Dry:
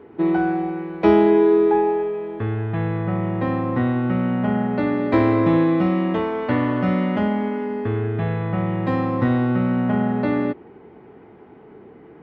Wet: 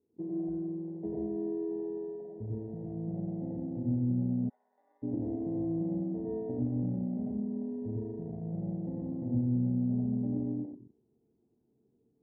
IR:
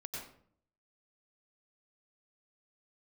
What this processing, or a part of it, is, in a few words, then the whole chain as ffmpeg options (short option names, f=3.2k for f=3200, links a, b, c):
television next door: -filter_complex "[0:a]acompressor=threshold=-18dB:ratio=5,lowpass=360[a];[1:a]atrim=start_sample=2205[b];[a][b]afir=irnorm=-1:irlink=0,afwtdn=0.0355,asplit=3[c][d][e];[c]afade=t=out:st=4.48:d=0.02[f];[d]highpass=f=1.1k:w=0.5412,highpass=f=1.1k:w=1.3066,afade=t=in:st=4.48:d=0.02,afade=t=out:st=5.02:d=0.02[g];[e]afade=t=in:st=5.02:d=0.02[h];[f][g][h]amix=inputs=3:normalize=0,volume=-8.5dB"